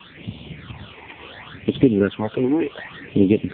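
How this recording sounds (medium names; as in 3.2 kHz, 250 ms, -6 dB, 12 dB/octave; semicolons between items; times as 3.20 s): a quantiser's noise floor 6-bit, dither triangular; phasing stages 8, 0.69 Hz, lowest notch 170–1600 Hz; AMR-NB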